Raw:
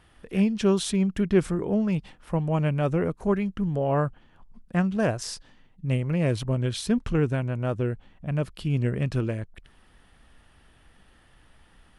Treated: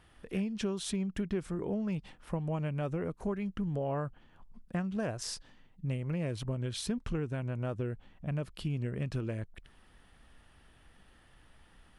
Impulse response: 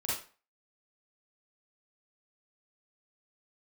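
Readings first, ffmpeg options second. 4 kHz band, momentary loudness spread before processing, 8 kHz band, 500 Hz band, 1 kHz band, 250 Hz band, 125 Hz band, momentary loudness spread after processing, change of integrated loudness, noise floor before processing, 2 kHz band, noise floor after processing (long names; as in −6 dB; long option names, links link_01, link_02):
−6.5 dB, 8 LU, −6.0 dB, −10.5 dB, −10.0 dB, −10.0 dB, −9.0 dB, 5 LU, −9.5 dB, −58 dBFS, −10.0 dB, −62 dBFS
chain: -af "acompressor=threshold=-27dB:ratio=6,volume=-3.5dB"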